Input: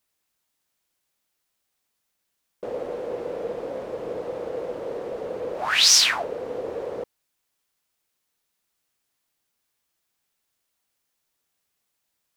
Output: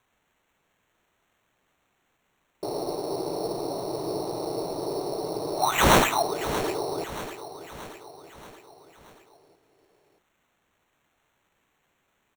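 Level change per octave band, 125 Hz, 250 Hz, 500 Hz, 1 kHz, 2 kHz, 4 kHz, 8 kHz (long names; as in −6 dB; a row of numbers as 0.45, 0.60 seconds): +13.0, +9.0, +1.0, +7.5, −2.0, −10.0, −9.5 decibels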